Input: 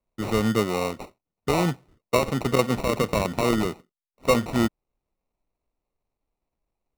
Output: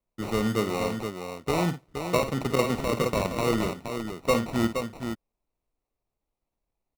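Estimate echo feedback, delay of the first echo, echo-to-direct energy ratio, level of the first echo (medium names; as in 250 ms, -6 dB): no regular repeats, 52 ms, -5.0 dB, -10.0 dB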